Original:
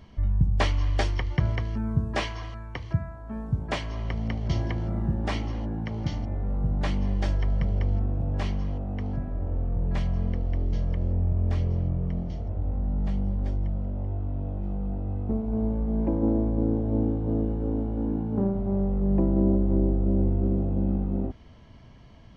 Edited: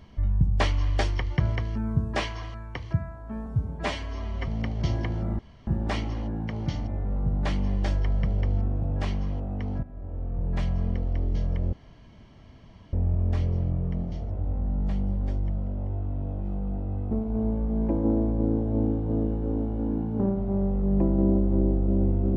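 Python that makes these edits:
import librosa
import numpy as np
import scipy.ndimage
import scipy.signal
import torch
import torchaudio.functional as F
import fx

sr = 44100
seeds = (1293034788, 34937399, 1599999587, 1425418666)

y = fx.edit(x, sr, fx.stretch_span(start_s=3.46, length_s=0.68, factor=1.5),
    fx.insert_room_tone(at_s=5.05, length_s=0.28),
    fx.fade_in_from(start_s=9.21, length_s=0.79, floor_db=-13.0),
    fx.insert_room_tone(at_s=11.11, length_s=1.2), tone=tone)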